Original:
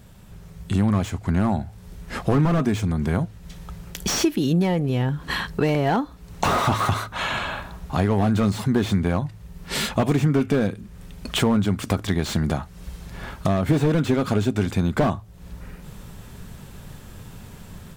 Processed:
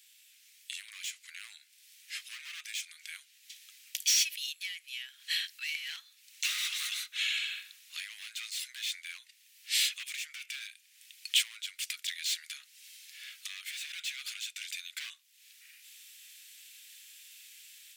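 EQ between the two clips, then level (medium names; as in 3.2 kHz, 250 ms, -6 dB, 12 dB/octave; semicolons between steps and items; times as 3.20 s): steep high-pass 2.2 kHz 36 dB/octave; 0.0 dB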